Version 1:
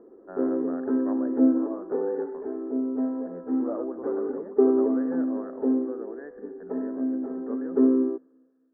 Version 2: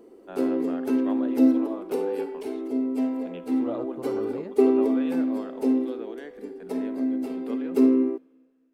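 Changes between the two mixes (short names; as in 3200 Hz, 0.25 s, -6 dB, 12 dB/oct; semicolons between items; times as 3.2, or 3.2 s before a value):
second voice: remove HPF 280 Hz 12 dB/oct; master: remove rippled Chebyshev low-pass 1800 Hz, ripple 3 dB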